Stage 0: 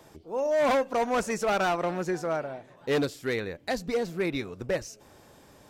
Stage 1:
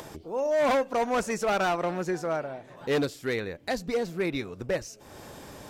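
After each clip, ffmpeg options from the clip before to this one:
-af "acompressor=mode=upward:threshold=0.02:ratio=2.5"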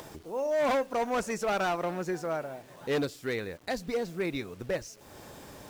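-af "acrusher=bits=8:mix=0:aa=0.000001,volume=0.708"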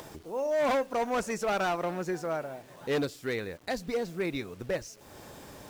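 -af anull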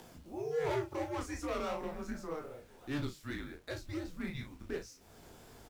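-filter_complex "[0:a]flanger=delay=17.5:depth=7:speed=2.7,asplit=2[s0][s1];[s1]adelay=37,volume=0.398[s2];[s0][s2]amix=inputs=2:normalize=0,afreqshift=-150,volume=0.531"

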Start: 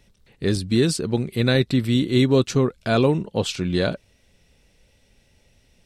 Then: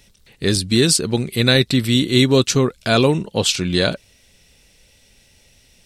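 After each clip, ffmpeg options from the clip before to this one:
-af "highshelf=f=2300:g=10.5,volume=1.33"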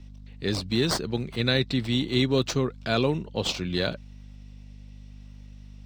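-filter_complex "[0:a]aeval=exprs='val(0)+0.02*(sin(2*PI*50*n/s)+sin(2*PI*2*50*n/s)/2+sin(2*PI*3*50*n/s)/3+sin(2*PI*4*50*n/s)/4+sin(2*PI*5*50*n/s)/5)':c=same,acrossover=split=120|6600[s0][s1][s2];[s2]acrusher=samples=22:mix=1:aa=0.000001:lfo=1:lforange=13.2:lforate=0.68[s3];[s0][s1][s3]amix=inputs=3:normalize=0,volume=0.355"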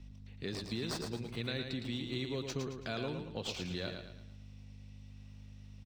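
-filter_complex "[0:a]equalizer=f=2500:w=6.4:g=2,acompressor=threshold=0.0224:ratio=2.5,asplit=2[s0][s1];[s1]aecho=0:1:111|222|333|444|555:0.501|0.2|0.0802|0.0321|0.0128[s2];[s0][s2]amix=inputs=2:normalize=0,volume=0.501"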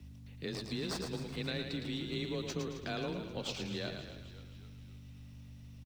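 -filter_complex "[0:a]afreqshift=22,asplit=7[s0][s1][s2][s3][s4][s5][s6];[s1]adelay=265,afreqshift=-57,volume=0.224[s7];[s2]adelay=530,afreqshift=-114,volume=0.12[s8];[s3]adelay=795,afreqshift=-171,volume=0.0653[s9];[s4]adelay=1060,afreqshift=-228,volume=0.0351[s10];[s5]adelay=1325,afreqshift=-285,volume=0.0191[s11];[s6]adelay=1590,afreqshift=-342,volume=0.0102[s12];[s0][s7][s8][s9][s10][s11][s12]amix=inputs=7:normalize=0,acrusher=bits=11:mix=0:aa=0.000001"

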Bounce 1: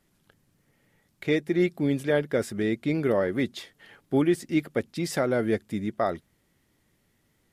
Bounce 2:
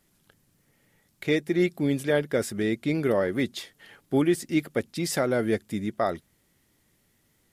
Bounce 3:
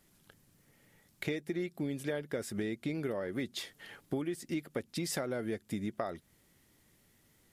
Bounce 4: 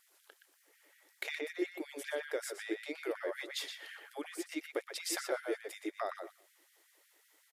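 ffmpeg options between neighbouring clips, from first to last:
-af "highshelf=f=4500:g=6.5"
-af "acompressor=threshold=0.0251:ratio=12"
-filter_complex "[0:a]asplit=2[s0][s1];[s1]adelay=120,lowpass=f=3100:p=1,volume=0.708,asplit=2[s2][s3];[s3]adelay=120,lowpass=f=3100:p=1,volume=0.18,asplit=2[s4][s5];[s5]adelay=120,lowpass=f=3100:p=1,volume=0.18[s6];[s2][s4][s6]amix=inputs=3:normalize=0[s7];[s0][s7]amix=inputs=2:normalize=0,afftfilt=real='re*gte(b*sr/1024,280*pow(1500/280,0.5+0.5*sin(2*PI*5.4*pts/sr)))':imag='im*gte(b*sr/1024,280*pow(1500/280,0.5+0.5*sin(2*PI*5.4*pts/sr)))':win_size=1024:overlap=0.75,volume=1.12"

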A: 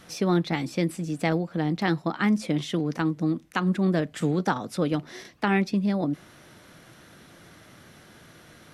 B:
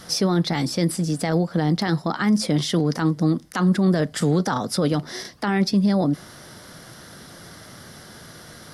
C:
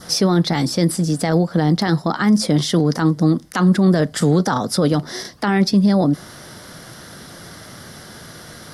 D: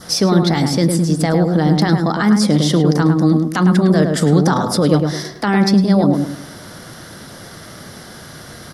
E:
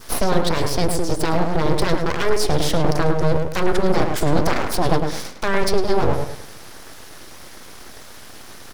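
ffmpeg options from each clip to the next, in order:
-af "equalizer=f=315:t=o:w=0.33:g=-4,equalizer=f=2500:t=o:w=0.33:g=-9,equalizer=f=5000:t=o:w=0.33:g=9,equalizer=f=10000:t=o:w=0.33:g=7,alimiter=limit=0.106:level=0:latency=1:release=14,volume=2.51"
-af "adynamicequalizer=threshold=0.00355:dfrequency=2500:dqfactor=2.3:tfrequency=2500:tqfactor=2.3:attack=5:release=100:ratio=0.375:range=2.5:mode=cutabove:tftype=bell,volume=1.68"
-filter_complex "[0:a]asplit=2[s0][s1];[s1]adelay=106,lowpass=f=1400:p=1,volume=0.668,asplit=2[s2][s3];[s3]adelay=106,lowpass=f=1400:p=1,volume=0.37,asplit=2[s4][s5];[s5]adelay=106,lowpass=f=1400:p=1,volume=0.37,asplit=2[s6][s7];[s7]adelay=106,lowpass=f=1400:p=1,volume=0.37,asplit=2[s8][s9];[s9]adelay=106,lowpass=f=1400:p=1,volume=0.37[s10];[s0][s2][s4][s6][s8][s10]amix=inputs=6:normalize=0,volume=1.19"
-af "aeval=exprs='abs(val(0))':c=same,volume=0.794"

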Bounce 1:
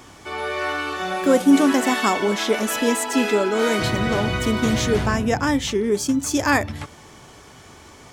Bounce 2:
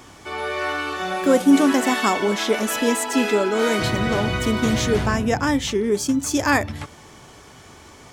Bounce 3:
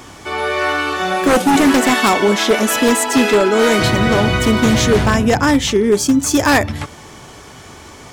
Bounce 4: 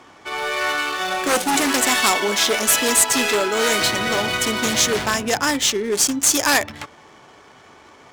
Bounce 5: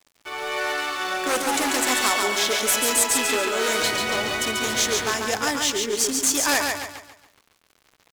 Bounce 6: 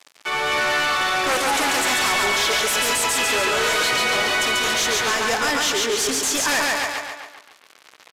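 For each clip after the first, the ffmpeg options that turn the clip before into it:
-af anull
-af "aeval=exprs='0.224*(abs(mod(val(0)/0.224+3,4)-2)-1)':c=same,volume=2.37"
-af "aemphasis=mode=production:type=riaa,adynamicsmooth=sensitivity=2:basefreq=1500,volume=0.562"
-filter_complex "[0:a]equalizer=f=170:w=2.2:g=-7.5,aeval=exprs='val(0)*gte(abs(val(0)),0.0112)':c=same,asplit=2[s0][s1];[s1]aecho=0:1:140|280|420|560|700:0.631|0.24|0.0911|0.0346|0.0132[s2];[s0][s2]amix=inputs=2:normalize=0,volume=0.562"
-filter_complex "[0:a]asplit=2[s0][s1];[s1]highpass=f=720:p=1,volume=22.4,asoftclip=type=tanh:threshold=0.562[s2];[s0][s2]amix=inputs=2:normalize=0,lowpass=f=5800:p=1,volume=0.501,aresample=32000,aresample=44100,asplit=2[s3][s4];[s4]adelay=250,highpass=300,lowpass=3400,asoftclip=type=hard:threshold=0.188,volume=0.398[s5];[s3][s5]amix=inputs=2:normalize=0,volume=0.422"

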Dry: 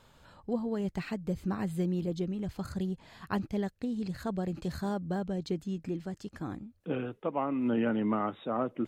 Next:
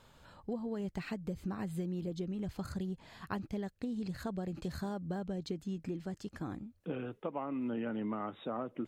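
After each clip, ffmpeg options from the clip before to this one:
-af "acompressor=threshold=0.0224:ratio=6,volume=0.891"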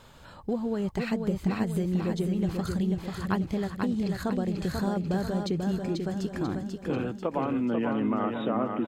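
-af "aecho=1:1:490|980|1470|1960|2450|2940:0.596|0.28|0.132|0.0618|0.0291|0.0137,volume=2.66"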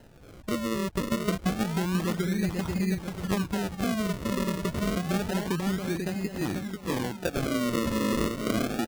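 -af "acrusher=samples=38:mix=1:aa=0.000001:lfo=1:lforange=38:lforate=0.28"

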